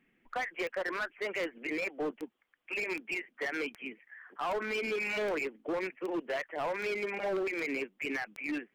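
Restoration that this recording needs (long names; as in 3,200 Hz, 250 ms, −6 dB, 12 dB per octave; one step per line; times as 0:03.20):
clipped peaks rebuilt −29.5 dBFS
click removal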